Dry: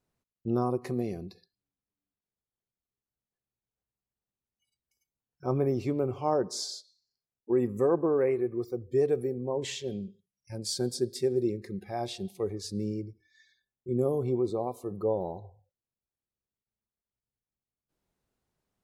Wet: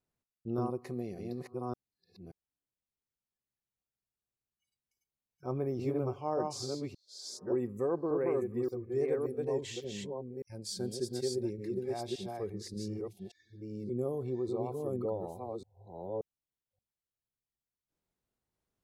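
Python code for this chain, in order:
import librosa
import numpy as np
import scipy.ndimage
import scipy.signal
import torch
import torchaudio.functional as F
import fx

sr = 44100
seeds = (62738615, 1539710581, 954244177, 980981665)

y = fx.reverse_delay(x, sr, ms=579, wet_db=-2.0)
y = y * 10.0 ** (-7.0 / 20.0)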